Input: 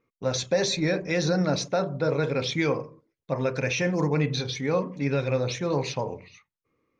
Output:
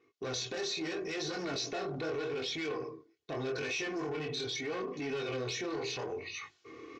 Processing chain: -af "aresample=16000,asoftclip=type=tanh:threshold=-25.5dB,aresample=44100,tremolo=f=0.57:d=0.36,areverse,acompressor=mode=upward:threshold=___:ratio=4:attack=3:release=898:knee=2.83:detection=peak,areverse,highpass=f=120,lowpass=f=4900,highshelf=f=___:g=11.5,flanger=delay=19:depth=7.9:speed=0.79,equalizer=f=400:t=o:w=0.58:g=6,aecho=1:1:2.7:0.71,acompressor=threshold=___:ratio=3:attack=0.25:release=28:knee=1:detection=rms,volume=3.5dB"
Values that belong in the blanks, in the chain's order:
-41dB, 2500, -38dB